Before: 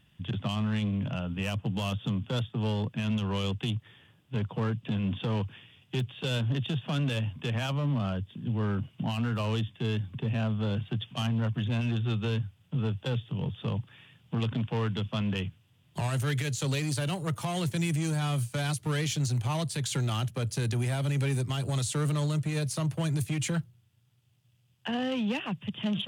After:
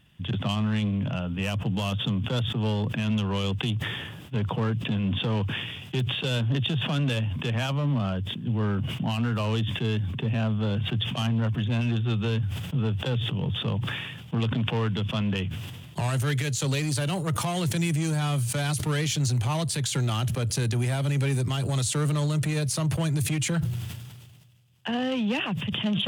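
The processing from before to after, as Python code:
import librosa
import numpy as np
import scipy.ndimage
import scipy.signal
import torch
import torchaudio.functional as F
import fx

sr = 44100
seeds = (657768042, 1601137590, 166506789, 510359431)

y = fx.sustainer(x, sr, db_per_s=37.0)
y = y * 10.0 ** (3.0 / 20.0)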